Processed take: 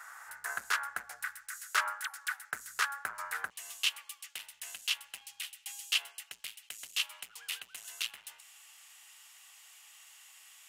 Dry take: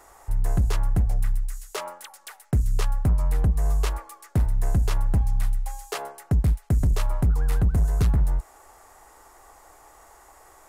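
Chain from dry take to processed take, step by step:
high-pass with resonance 1,500 Hz, resonance Q 5, from 0:03.50 2,900 Hz

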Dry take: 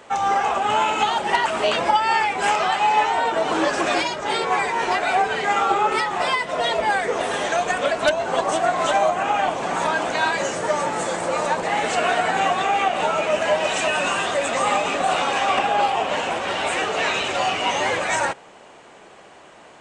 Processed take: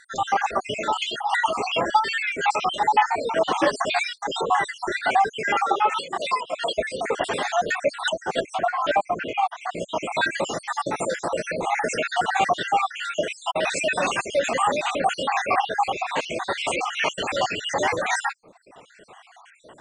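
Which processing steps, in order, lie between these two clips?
time-frequency cells dropped at random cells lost 61%
0:05.61–0:06.78: high-pass filter 420 Hz 6 dB per octave
reverb reduction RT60 0.95 s
0:08.45–0:09.93: low-pass filter 1,900 Hz → 3,400 Hz 6 dB per octave
level +2 dB

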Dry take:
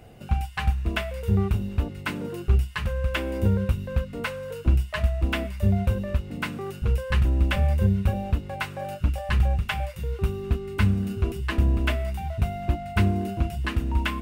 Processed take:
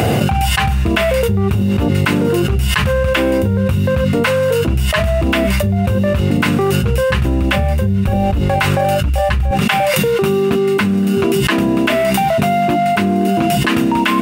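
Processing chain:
high-pass filter 85 Hz 24 dB per octave, from 0:08.08 41 Hz, from 0:09.51 170 Hz
envelope flattener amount 100%
level +2.5 dB

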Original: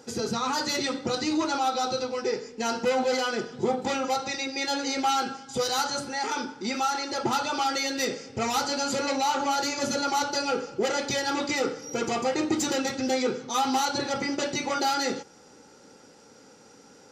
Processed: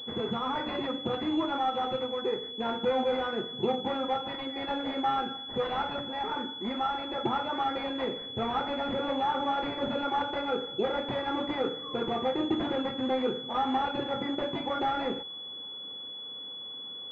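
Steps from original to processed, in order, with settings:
switching amplifier with a slow clock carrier 3,400 Hz
level −2.5 dB

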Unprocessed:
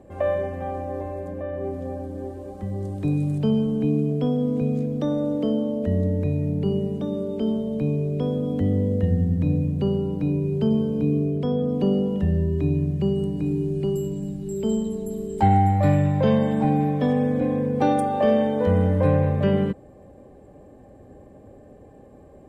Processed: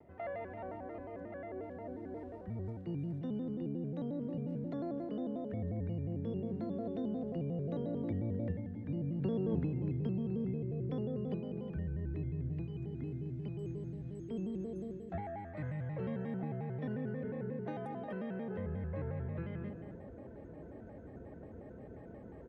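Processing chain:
source passing by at 0:09.56, 20 m/s, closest 1.1 metres
reversed playback
upward compression, threshold −48 dBFS
reversed playback
high-pass filter 60 Hz
low-shelf EQ 390 Hz +5 dB
on a send: single-tap delay 254 ms −12.5 dB
on the sum: downward compressor 6 to 1, threshold −49 dBFS, peak gain reduction 25.5 dB
Bessel low-pass filter 3,100 Hz
parametric band 1,800 Hz +9 dB 0.56 octaves
hum removal 92.25 Hz, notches 12
pitch modulation by a square or saw wave square 5.6 Hz, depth 160 cents
level +16 dB

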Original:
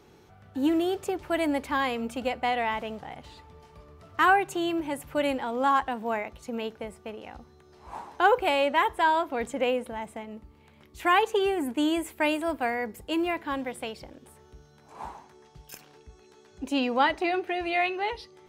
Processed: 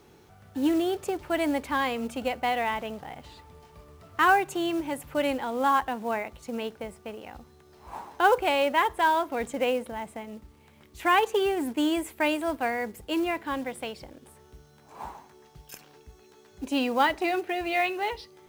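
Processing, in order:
log-companded quantiser 6 bits

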